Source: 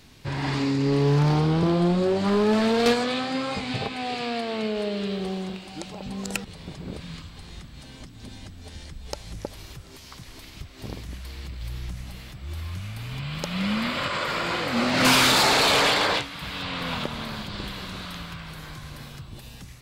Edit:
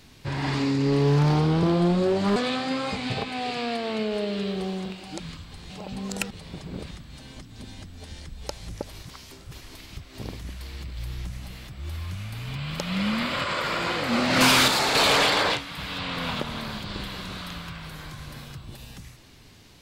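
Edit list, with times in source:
0:02.36–0:03.00: remove
0:07.05–0:07.55: move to 0:05.84
0:09.67–0:10.25: reverse
0:15.32–0:15.59: clip gain −4 dB

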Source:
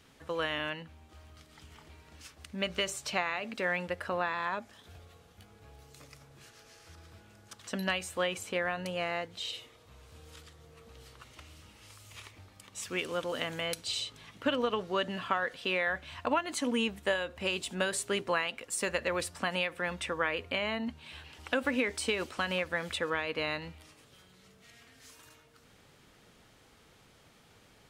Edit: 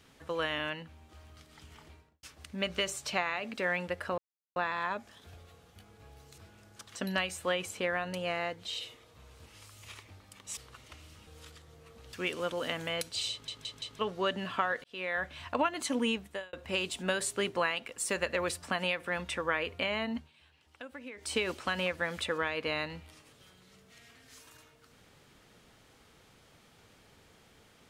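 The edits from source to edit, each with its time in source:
0:01.85–0:02.23: fade out and dull
0:04.18: splice in silence 0.38 s
0:06.00–0:07.10: remove
0:10.18–0:11.04: swap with 0:11.74–0:12.85
0:14.03: stutter in place 0.17 s, 4 plays
0:15.56–0:15.96: fade in
0:16.80–0:17.25: fade out
0:20.89–0:22.04: duck −15.5 dB, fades 0.15 s

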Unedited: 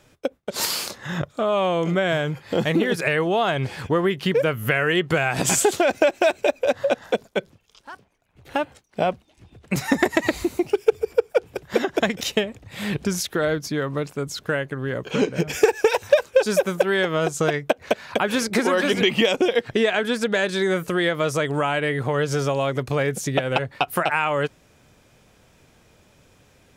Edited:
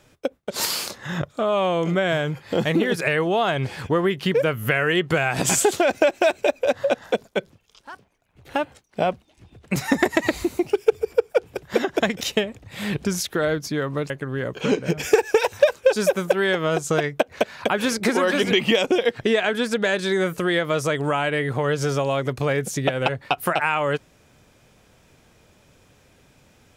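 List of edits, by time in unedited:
0:14.10–0:14.60: remove

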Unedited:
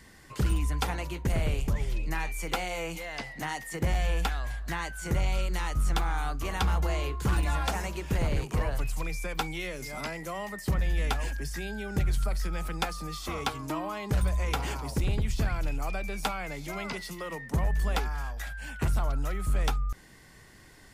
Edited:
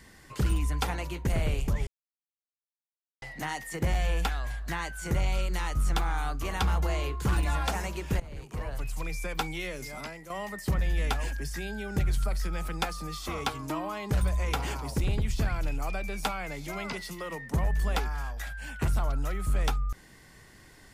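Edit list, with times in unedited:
0:01.87–0:03.22: silence
0:08.20–0:09.20: fade in linear, from −20.5 dB
0:09.77–0:10.30: fade out, to −10.5 dB

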